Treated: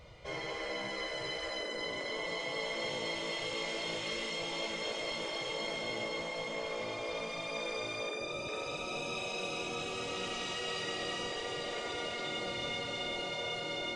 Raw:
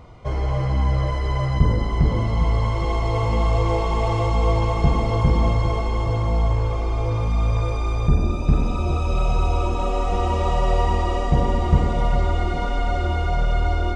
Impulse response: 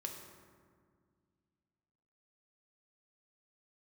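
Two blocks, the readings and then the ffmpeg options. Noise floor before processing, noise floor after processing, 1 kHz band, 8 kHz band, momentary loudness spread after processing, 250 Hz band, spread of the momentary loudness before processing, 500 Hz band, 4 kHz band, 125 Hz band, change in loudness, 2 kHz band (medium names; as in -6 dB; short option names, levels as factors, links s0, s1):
-23 dBFS, -40 dBFS, -16.0 dB, no reading, 2 LU, -17.5 dB, 4 LU, -11.5 dB, +1.5 dB, -32.0 dB, -14.5 dB, -3.0 dB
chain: -filter_complex "[0:a]tiltshelf=f=1200:g=-4.5[s0];[1:a]atrim=start_sample=2205,afade=t=out:st=0.27:d=0.01,atrim=end_sample=12348,asetrate=70560,aresample=44100[s1];[s0][s1]afir=irnorm=-1:irlink=0,afftfilt=real='re*lt(hypot(re,im),0.0794)':imag='im*lt(hypot(re,im),0.0794)':win_size=1024:overlap=0.75,equalizer=f=250:t=o:w=1:g=-6,equalizer=f=500:t=o:w=1:g=6,equalizer=f=1000:t=o:w=1:g=-7,equalizer=f=2000:t=o:w=1:g=4,equalizer=f=4000:t=o:w=1:g=4"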